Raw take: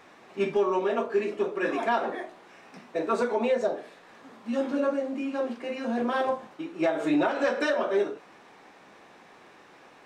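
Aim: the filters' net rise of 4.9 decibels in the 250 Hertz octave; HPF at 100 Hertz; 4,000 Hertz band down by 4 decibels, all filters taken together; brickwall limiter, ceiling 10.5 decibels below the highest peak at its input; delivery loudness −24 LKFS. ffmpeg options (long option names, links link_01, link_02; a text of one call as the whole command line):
ffmpeg -i in.wav -af "highpass=100,equalizer=frequency=250:width_type=o:gain=6,equalizer=frequency=4000:width_type=o:gain=-5.5,volume=7dB,alimiter=limit=-15.5dB:level=0:latency=1" out.wav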